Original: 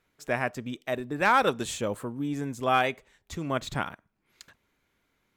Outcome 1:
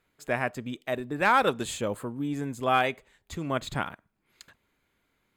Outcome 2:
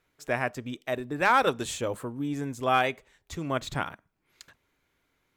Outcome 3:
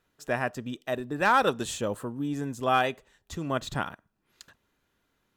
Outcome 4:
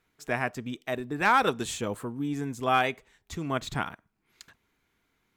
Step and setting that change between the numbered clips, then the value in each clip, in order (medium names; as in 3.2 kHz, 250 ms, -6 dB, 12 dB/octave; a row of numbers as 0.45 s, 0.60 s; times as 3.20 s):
band-stop, frequency: 5.7 kHz, 210 Hz, 2.2 kHz, 560 Hz